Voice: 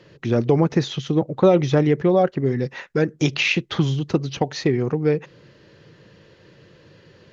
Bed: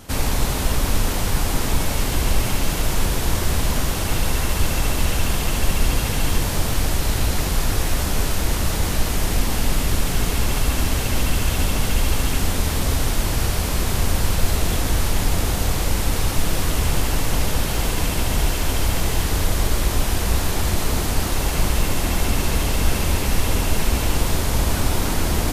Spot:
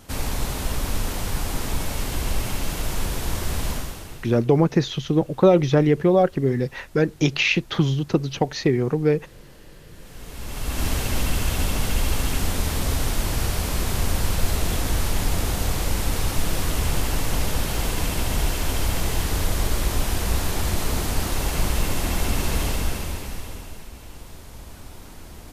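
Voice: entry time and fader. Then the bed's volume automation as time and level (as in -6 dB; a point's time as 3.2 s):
4.00 s, 0.0 dB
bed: 3.71 s -5.5 dB
4.48 s -28.5 dB
9.85 s -28.5 dB
10.86 s -3 dB
22.67 s -3 dB
23.9 s -21 dB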